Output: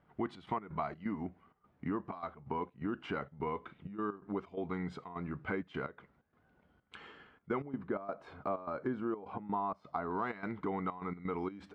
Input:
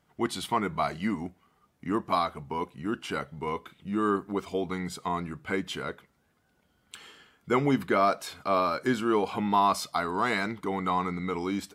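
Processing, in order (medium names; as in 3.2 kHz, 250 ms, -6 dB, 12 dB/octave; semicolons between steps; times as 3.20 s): low-pass 1.9 kHz 12 dB/octave, from 7.62 s 1.1 kHz, from 10.11 s 1.9 kHz; compression 4:1, threshold -35 dBFS, peak gain reduction 13 dB; trance gate "xxx.x.xx.xxxx.x" 128 bpm -12 dB; trim +1 dB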